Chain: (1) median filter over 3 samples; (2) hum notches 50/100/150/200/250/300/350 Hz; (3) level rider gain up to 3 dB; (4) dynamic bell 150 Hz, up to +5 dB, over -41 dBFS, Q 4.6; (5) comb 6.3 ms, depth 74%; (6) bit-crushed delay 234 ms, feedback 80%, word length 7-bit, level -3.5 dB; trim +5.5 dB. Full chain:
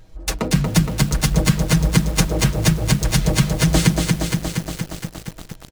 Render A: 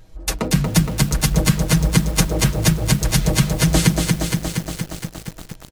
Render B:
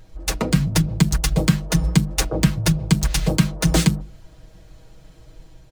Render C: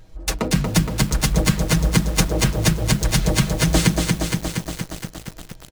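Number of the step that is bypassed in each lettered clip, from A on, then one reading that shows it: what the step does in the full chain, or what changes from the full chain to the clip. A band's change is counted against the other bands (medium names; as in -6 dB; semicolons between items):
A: 1, 8 kHz band +2.0 dB; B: 6, 250 Hz band +1.5 dB; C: 4, 125 Hz band -2.5 dB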